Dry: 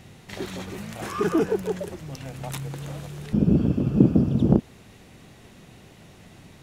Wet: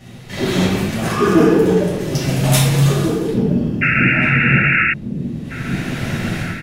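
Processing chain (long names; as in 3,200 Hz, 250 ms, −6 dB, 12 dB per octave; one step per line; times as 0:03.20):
0:02.00–0:04.30: high-shelf EQ 2,700 Hz +8 dB
convolution reverb RT60 1.1 s, pre-delay 3 ms, DRR −9 dB
0:03.81–0:04.94: sound drawn into the spectrogram noise 1,300–2,800 Hz −3 dBFS
automatic gain control gain up to 15 dB
slap from a distant wall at 290 metres, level −7 dB
level −1 dB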